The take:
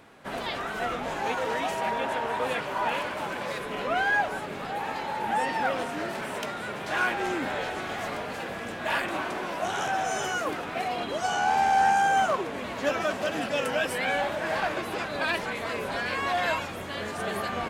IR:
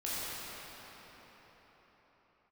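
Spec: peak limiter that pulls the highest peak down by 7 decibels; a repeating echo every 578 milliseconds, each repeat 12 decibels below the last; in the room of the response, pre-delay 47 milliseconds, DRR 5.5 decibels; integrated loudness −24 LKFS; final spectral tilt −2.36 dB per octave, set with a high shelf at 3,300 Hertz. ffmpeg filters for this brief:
-filter_complex "[0:a]highshelf=frequency=3300:gain=8.5,alimiter=limit=-18dB:level=0:latency=1,aecho=1:1:578|1156|1734:0.251|0.0628|0.0157,asplit=2[link_01][link_02];[1:a]atrim=start_sample=2205,adelay=47[link_03];[link_02][link_03]afir=irnorm=-1:irlink=0,volume=-11.5dB[link_04];[link_01][link_04]amix=inputs=2:normalize=0,volume=3dB"

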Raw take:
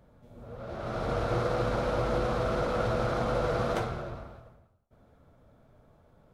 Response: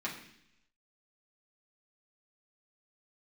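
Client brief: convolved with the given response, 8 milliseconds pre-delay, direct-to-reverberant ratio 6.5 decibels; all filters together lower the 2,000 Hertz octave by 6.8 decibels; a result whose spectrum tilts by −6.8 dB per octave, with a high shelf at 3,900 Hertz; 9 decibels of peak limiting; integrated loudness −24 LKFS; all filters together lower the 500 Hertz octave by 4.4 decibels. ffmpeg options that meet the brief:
-filter_complex "[0:a]equalizer=frequency=500:width_type=o:gain=-4.5,equalizer=frequency=2000:width_type=o:gain=-9,highshelf=frequency=3900:gain=-5,alimiter=level_in=4dB:limit=-24dB:level=0:latency=1,volume=-4dB,asplit=2[link_01][link_02];[1:a]atrim=start_sample=2205,adelay=8[link_03];[link_02][link_03]afir=irnorm=-1:irlink=0,volume=-10dB[link_04];[link_01][link_04]amix=inputs=2:normalize=0,volume=13dB"

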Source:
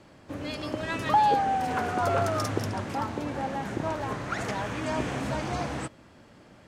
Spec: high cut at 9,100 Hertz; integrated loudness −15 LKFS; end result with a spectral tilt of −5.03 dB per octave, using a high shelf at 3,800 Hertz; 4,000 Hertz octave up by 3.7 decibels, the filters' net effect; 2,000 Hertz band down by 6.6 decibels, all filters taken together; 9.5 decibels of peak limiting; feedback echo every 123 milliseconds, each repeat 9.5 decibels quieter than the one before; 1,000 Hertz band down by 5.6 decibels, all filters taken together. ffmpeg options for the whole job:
ffmpeg -i in.wav -af "lowpass=9100,equalizer=frequency=1000:width_type=o:gain=-6.5,equalizer=frequency=2000:width_type=o:gain=-8.5,highshelf=frequency=3800:gain=3,equalizer=frequency=4000:width_type=o:gain=6,alimiter=limit=-22.5dB:level=0:latency=1,aecho=1:1:123|246|369|492:0.335|0.111|0.0365|0.012,volume=18dB" out.wav

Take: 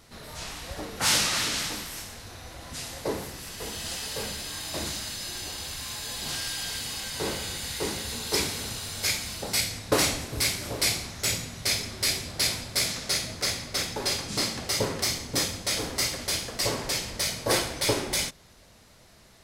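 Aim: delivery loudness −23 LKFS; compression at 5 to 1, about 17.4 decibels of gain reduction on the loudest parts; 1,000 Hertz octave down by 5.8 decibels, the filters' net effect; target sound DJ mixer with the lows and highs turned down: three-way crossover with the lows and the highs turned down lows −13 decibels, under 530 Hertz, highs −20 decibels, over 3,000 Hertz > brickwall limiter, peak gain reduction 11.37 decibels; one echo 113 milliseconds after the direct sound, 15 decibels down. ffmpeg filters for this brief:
ffmpeg -i in.wav -filter_complex "[0:a]equalizer=frequency=1000:width_type=o:gain=-6.5,acompressor=threshold=-41dB:ratio=5,acrossover=split=530 3000:gain=0.224 1 0.1[link_01][link_02][link_03];[link_01][link_02][link_03]amix=inputs=3:normalize=0,aecho=1:1:113:0.178,volume=29dB,alimiter=limit=-14.5dB:level=0:latency=1" out.wav

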